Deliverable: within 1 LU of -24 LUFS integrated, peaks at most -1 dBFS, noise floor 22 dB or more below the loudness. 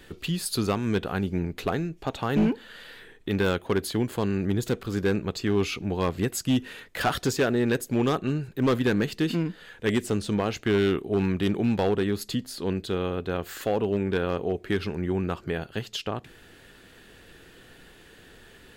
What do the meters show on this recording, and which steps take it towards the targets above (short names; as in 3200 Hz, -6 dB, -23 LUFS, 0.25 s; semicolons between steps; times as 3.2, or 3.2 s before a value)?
clipped 0.9%; flat tops at -17.0 dBFS; loudness -27.0 LUFS; peak -17.0 dBFS; loudness target -24.0 LUFS
-> clip repair -17 dBFS; gain +3 dB